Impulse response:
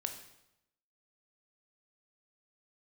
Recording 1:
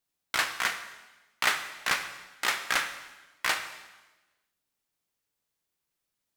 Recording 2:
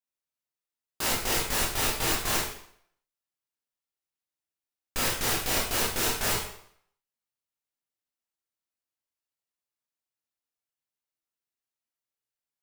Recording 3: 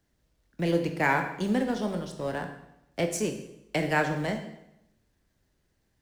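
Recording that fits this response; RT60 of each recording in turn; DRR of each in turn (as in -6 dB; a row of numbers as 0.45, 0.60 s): 3; 1.2, 0.65, 0.85 s; 7.5, -5.0, 5.0 dB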